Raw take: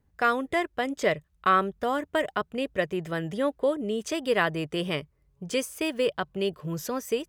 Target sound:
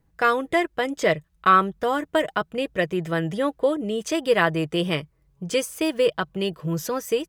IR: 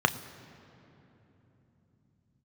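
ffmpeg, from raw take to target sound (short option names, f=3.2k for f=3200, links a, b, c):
-af "aecho=1:1:6.1:0.39,volume=3.5dB"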